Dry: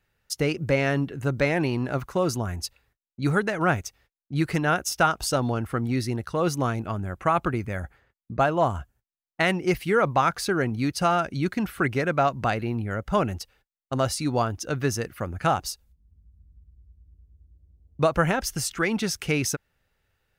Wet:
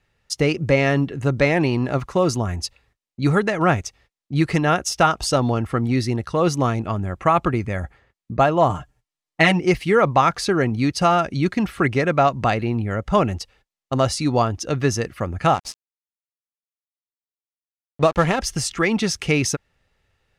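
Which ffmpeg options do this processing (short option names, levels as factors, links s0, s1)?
-filter_complex "[0:a]asettb=1/sr,asplit=3[s0][s1][s2];[s0]atrim=end=8.694[s3];[s1]atrim=start=8.69:end=9.6,asetpts=PTS-STARTPTS,afade=t=in:d=0.004:c=qsin,afade=t=out:st=0.906:d=0.004:c=qsin,aecho=1:1:6.6:0.79,atrim=end_sample=40131[s4];[s2]atrim=start=9.596[s5];[s3][s4]acrossfade=d=0.004:c1=hsin:c2=qsin[s6];[s6][s5]acrossfade=d=0.004:c1=qsin:c2=hsin,asettb=1/sr,asplit=3[s7][s8][s9];[s7]atrim=end=15.544[s10];[s8]atrim=start=15.54:end=18.39,asetpts=PTS-STARTPTS,afade=t=in:d=0.004:c=qsin,afade=t=out:st=2.846:d=0.004:c=qsin,aeval=exprs='sgn(val(0))*max(abs(val(0))-0.0168,0)':c=same[s11];[s9]atrim=start=18.386[s12];[s10][s11]acrossfade=d=0.004:c1=hsin:c2=qsin[s13];[s13][s12]acrossfade=d=0.004:c1=qsin:c2=hsin,lowpass=8200,bandreject=f=1500:w=9,volume=1.88"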